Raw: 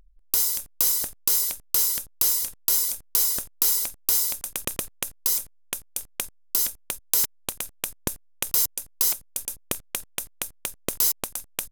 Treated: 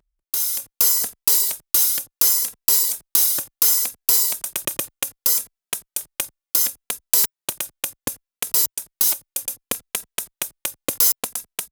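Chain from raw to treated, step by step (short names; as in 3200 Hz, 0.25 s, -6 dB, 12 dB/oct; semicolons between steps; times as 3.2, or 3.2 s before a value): HPF 210 Hz 6 dB/oct; AGC; endless flanger 2.7 ms -0.68 Hz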